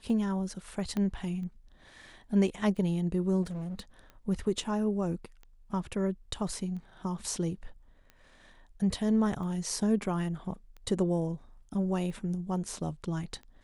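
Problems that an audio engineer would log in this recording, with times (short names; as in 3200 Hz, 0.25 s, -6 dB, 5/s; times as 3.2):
tick 45 rpm
0.97 pop -21 dBFS
3.42–3.8 clipped -34 dBFS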